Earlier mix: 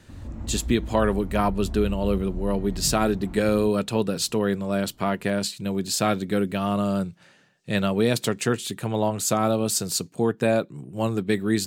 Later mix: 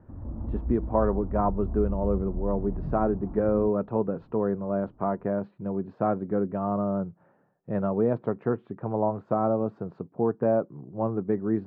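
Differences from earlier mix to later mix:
speech: add bass shelf 310 Hz -5.5 dB; master: add low-pass 1.1 kHz 24 dB/octave

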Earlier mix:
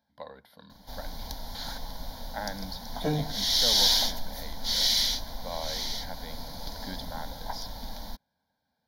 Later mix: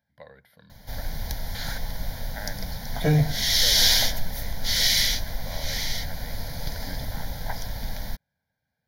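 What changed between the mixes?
background +8.0 dB; master: add ten-band graphic EQ 125 Hz +8 dB, 250 Hz -8 dB, 1 kHz -10 dB, 2 kHz +8 dB, 4 kHz -8 dB

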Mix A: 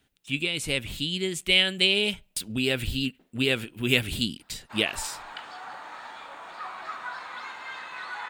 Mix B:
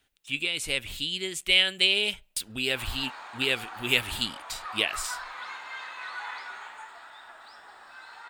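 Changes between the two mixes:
background: entry -1.95 s; master: add peaking EQ 170 Hz -11 dB 2.4 oct

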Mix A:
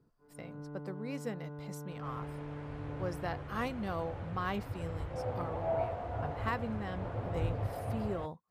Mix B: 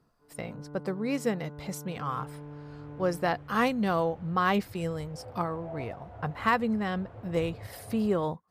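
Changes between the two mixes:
speech +10.5 dB; second sound -8.5 dB

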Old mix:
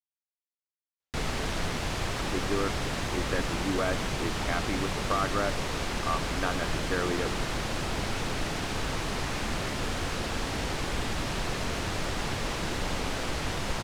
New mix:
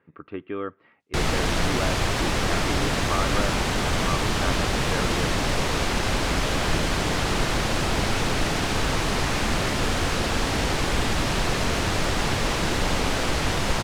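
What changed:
speech: entry -2.00 s; background +7.5 dB

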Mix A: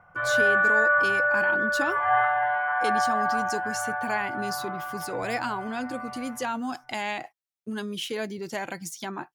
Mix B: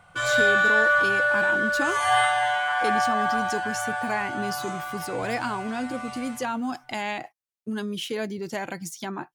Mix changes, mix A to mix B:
background: remove low-pass 1.8 kHz 24 dB/octave; master: add bass shelf 390 Hz +4 dB

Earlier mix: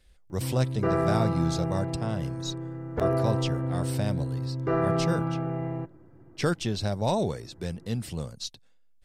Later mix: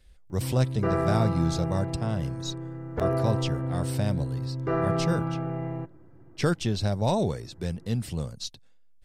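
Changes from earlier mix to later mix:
background: add bass shelf 460 Hz -3.5 dB; master: add bass shelf 180 Hz +4.5 dB

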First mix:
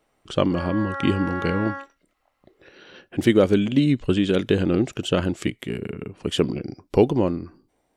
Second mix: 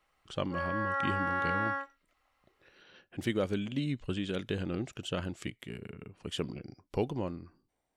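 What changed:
speech -10.5 dB; master: add peaking EQ 340 Hz -5.5 dB 1.6 oct

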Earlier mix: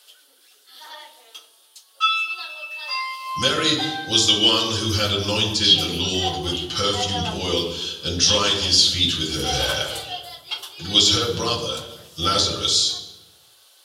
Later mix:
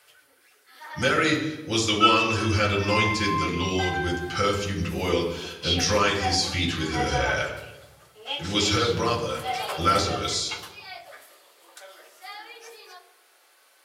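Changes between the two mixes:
speech: entry -2.40 s; master: add resonant high shelf 2.7 kHz -6.5 dB, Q 3

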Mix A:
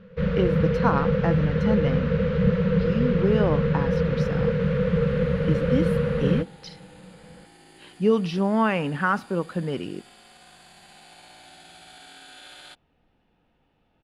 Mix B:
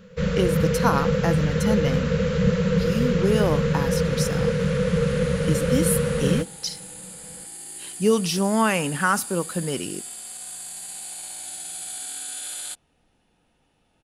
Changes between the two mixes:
second sound: add treble shelf 5.1 kHz -6 dB; master: remove distance through air 320 m

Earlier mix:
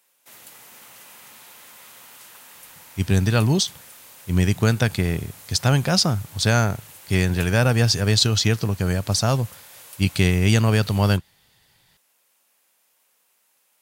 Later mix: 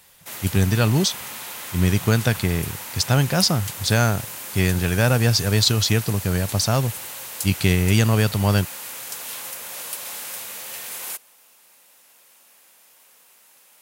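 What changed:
speech: entry -2.55 s; background +11.5 dB

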